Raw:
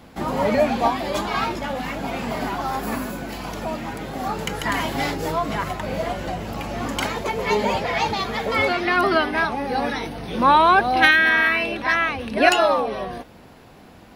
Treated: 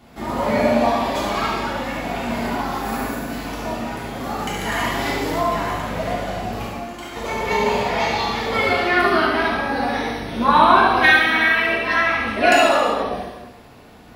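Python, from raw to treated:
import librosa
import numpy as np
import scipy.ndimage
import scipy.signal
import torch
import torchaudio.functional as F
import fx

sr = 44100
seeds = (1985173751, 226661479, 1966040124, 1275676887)

p1 = fx.comb_fb(x, sr, f0_hz=350.0, decay_s=0.22, harmonics='all', damping=0.0, mix_pct=80, at=(6.67, 7.16))
p2 = p1 + fx.echo_single(p1, sr, ms=72, db=-7.0, dry=0)
p3 = fx.rev_gated(p2, sr, seeds[0], gate_ms=420, shape='falling', drr_db=-6.0)
y = p3 * librosa.db_to_amplitude(-5.5)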